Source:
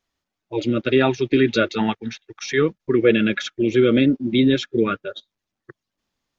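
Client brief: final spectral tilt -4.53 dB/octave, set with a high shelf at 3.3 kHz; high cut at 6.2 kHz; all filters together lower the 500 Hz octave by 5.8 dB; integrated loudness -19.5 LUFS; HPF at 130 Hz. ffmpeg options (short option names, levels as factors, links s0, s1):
-af "highpass=130,lowpass=6200,equalizer=f=500:t=o:g=-8,highshelf=f=3300:g=-4.5,volume=1.5"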